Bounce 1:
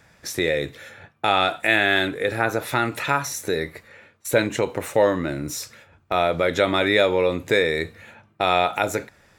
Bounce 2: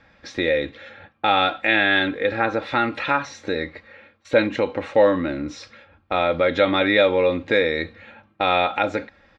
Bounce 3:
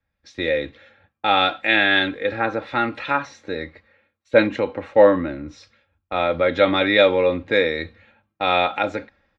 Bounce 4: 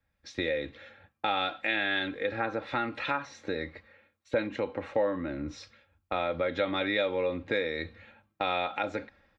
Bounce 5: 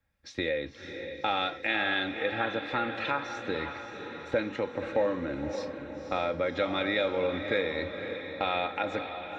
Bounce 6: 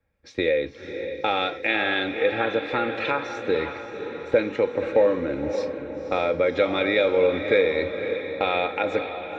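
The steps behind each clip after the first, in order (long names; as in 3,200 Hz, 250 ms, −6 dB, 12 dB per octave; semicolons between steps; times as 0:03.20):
low-pass filter 4,200 Hz 24 dB per octave; comb filter 3.7 ms, depth 55%
multiband upward and downward expander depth 70%
downward compressor 3 to 1, threshold −30 dBFS, peak gain reduction 16.5 dB
feedback delay with all-pass diffusion 543 ms, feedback 55%, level −8 dB
hollow resonant body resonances 440/2,300 Hz, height 9 dB, ringing for 20 ms; one half of a high-frequency compander decoder only; level +3.5 dB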